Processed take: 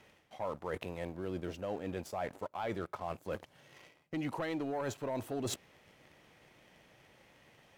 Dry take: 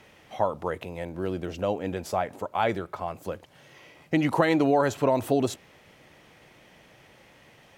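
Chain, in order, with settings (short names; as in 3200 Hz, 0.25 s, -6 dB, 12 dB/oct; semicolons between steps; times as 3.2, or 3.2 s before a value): sample leveller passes 2; reverse; compressor 6:1, threshold -32 dBFS, peak gain reduction 18 dB; reverse; gain -4 dB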